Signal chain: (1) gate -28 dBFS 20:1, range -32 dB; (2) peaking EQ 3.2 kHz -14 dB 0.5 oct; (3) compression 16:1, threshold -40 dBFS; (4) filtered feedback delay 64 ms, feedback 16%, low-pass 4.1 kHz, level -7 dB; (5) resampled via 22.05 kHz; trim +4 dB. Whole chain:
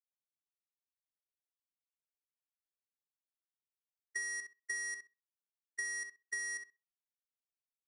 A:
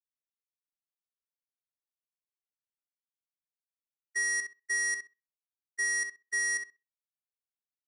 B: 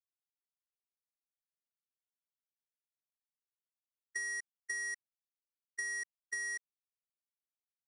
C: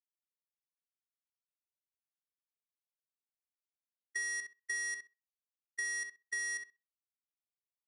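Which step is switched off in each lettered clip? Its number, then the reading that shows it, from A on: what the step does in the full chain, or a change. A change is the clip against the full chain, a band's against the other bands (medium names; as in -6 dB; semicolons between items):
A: 3, mean gain reduction 9.0 dB; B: 4, momentary loudness spread change -1 LU; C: 2, 500 Hz band -1.5 dB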